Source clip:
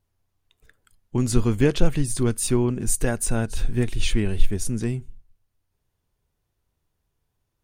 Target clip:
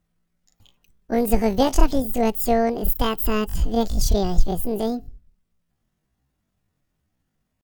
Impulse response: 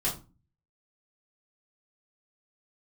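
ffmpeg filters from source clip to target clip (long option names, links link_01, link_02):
-af "asetrate=83250,aresample=44100,atempo=0.529732,bandreject=frequency=850:width=14,volume=1.5dB"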